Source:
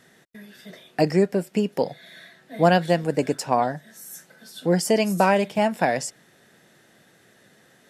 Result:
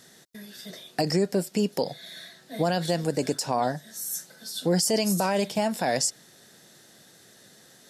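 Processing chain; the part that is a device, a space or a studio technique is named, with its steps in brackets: over-bright horn tweeter (resonant high shelf 3300 Hz +7.5 dB, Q 1.5; limiter -14.5 dBFS, peak gain reduction 10 dB)

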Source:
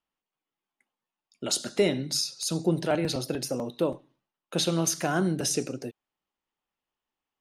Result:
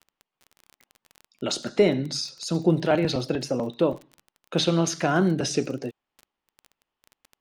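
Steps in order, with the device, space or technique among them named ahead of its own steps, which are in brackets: 1.52–2.55 dynamic EQ 3200 Hz, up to -5 dB, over -45 dBFS, Q 1.3; lo-fi chain (LPF 4600 Hz 12 dB/oct; wow and flutter 29 cents; crackle 24/s -38 dBFS); gain +4.5 dB

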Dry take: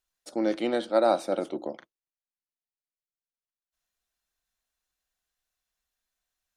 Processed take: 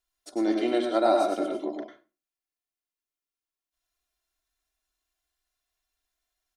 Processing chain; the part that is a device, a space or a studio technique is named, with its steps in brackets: microphone above a desk (comb 2.9 ms, depth 74%; reverb RT60 0.35 s, pre-delay 93 ms, DRR 1.5 dB); gain -2.5 dB

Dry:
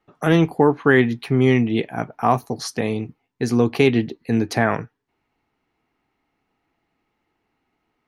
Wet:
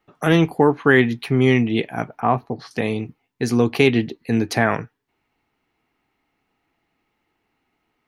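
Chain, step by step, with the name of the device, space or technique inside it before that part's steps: 2.2–2.71 air absorption 380 m; presence and air boost (bell 2700 Hz +3 dB 1.5 oct; high shelf 9600 Hz +5.5 dB)

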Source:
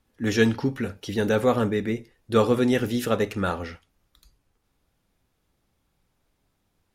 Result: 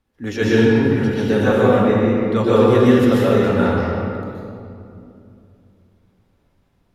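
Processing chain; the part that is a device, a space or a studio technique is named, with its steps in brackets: 1.84–2.36 LPF 7100 Hz; swimming-pool hall (reverb RT60 2.7 s, pre-delay 0.117 s, DRR -9 dB; high shelf 4800 Hz -7 dB); gain -1.5 dB

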